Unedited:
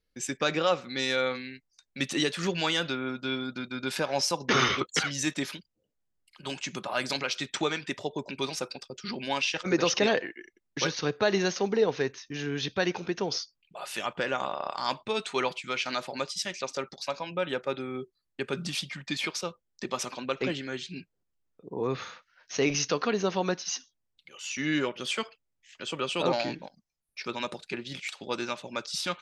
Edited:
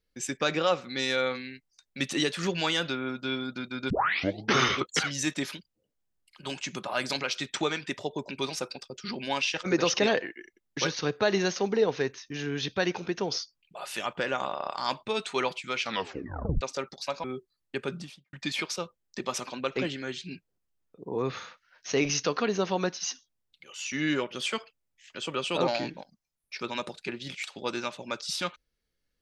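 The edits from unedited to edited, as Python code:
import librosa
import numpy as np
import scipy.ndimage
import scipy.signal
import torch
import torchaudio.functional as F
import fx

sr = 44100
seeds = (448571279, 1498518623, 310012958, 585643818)

y = fx.studio_fade_out(x, sr, start_s=18.42, length_s=0.56)
y = fx.edit(y, sr, fx.tape_start(start_s=3.9, length_s=0.65),
    fx.tape_stop(start_s=15.82, length_s=0.79),
    fx.cut(start_s=17.24, length_s=0.65), tone=tone)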